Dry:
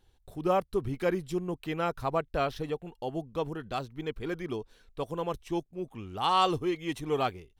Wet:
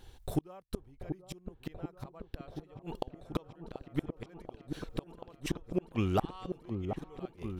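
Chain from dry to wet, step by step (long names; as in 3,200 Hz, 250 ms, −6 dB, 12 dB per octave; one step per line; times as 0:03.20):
gate with flip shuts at −29 dBFS, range −36 dB
echo whose low-pass opens from repeat to repeat 734 ms, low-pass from 750 Hz, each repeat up 1 octave, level −6 dB
level +11.5 dB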